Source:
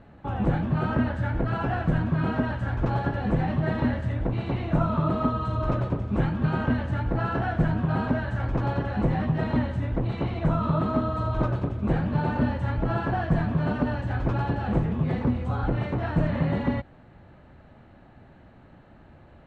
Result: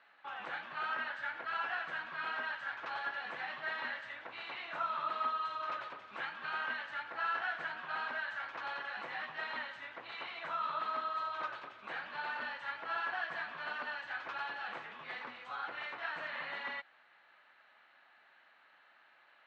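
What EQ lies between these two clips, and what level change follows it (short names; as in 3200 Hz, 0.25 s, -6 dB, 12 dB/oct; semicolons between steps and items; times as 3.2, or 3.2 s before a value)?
Butterworth band-pass 2600 Hz, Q 0.69; 0.0 dB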